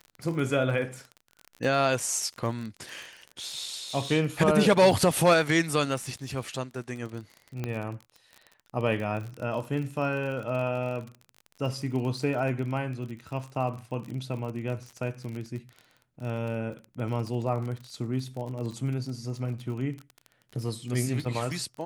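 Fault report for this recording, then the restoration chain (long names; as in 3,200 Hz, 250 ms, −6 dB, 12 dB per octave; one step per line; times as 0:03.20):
surface crackle 32 per second −34 dBFS
0:07.64: click −18 dBFS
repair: click removal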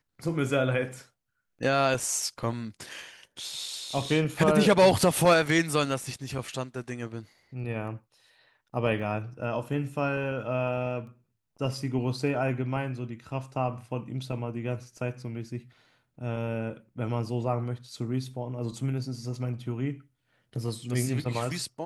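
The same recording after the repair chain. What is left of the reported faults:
none of them is left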